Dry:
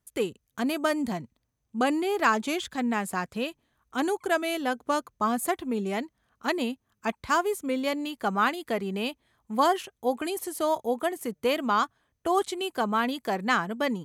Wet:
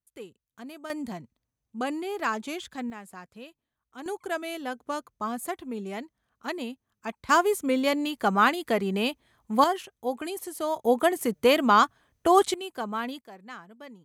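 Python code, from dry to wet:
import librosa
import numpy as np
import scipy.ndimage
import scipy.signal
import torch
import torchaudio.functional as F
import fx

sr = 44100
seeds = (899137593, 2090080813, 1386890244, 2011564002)

y = fx.gain(x, sr, db=fx.steps((0.0, -14.5), (0.9, -5.5), (2.9, -14.0), (4.06, -5.5), (7.29, 3.5), (9.64, -3.0), (10.85, 5.5), (12.54, -5.5), (13.21, -18.0)))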